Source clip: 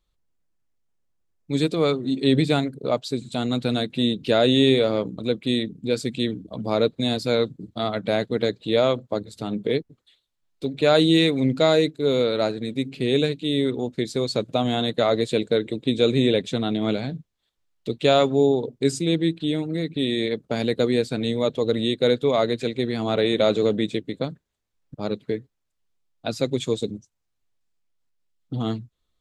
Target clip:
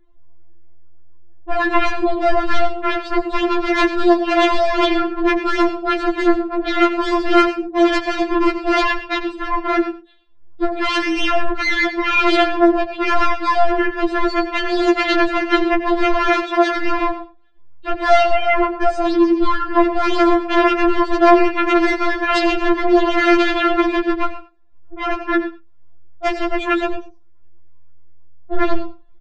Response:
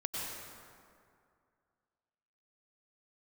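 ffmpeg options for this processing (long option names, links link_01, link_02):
-filter_complex "[0:a]lowpass=1200,alimiter=limit=-17dB:level=0:latency=1:release=58,flanger=delay=8.1:depth=1.8:regen=-18:speed=1.6:shape=triangular,aeval=exprs='0.133*sin(PI/2*5.62*val(0)/0.133)':channel_layout=same,asettb=1/sr,asplit=3[link_01][link_02][link_03];[link_01]atrim=end=16.284[link_04];[link_02]atrim=start=16.28:end=16.77,asetpts=PTS-STARTPTS,afade=type=in:duration=0.004:curve=qsin,afade=type=out:start_time=0.486:duration=0.004:curve=qsin,highpass=frequency=140:poles=1[link_05];[link_03]atrim=start=16.766[link_06];[link_04][link_05]acrossfade=duration=0.004:curve1=hsin:curve2=qsin[link_07];[link_07][link_06]acrossfade=duration=0.004:curve1=qsin:curve2=hsin,aecho=1:1:90:0.168,asplit=2[link_08][link_09];[1:a]atrim=start_sample=2205,atrim=end_sample=6174[link_10];[link_09][link_10]afir=irnorm=-1:irlink=0,volume=-5.5dB[link_11];[link_08][link_11]amix=inputs=2:normalize=0,afftfilt=real='re*4*eq(mod(b,16),0)':imag='im*4*eq(mod(b,16),0)':win_size=2048:overlap=0.75,volume=3.5dB"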